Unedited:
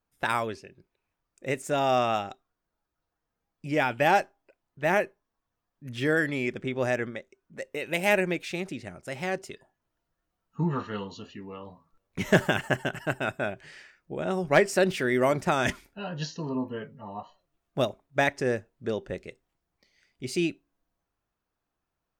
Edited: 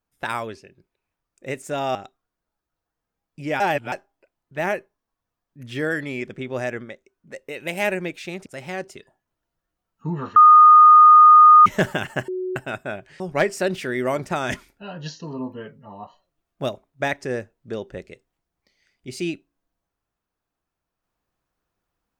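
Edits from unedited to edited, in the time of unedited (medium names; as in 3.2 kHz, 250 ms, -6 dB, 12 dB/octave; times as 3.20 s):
1.95–2.21 s: delete
3.86–4.18 s: reverse
8.72–9.00 s: delete
10.90–12.20 s: bleep 1.23 kHz -6 dBFS
12.82–13.10 s: bleep 369 Hz -24 dBFS
13.74–14.36 s: delete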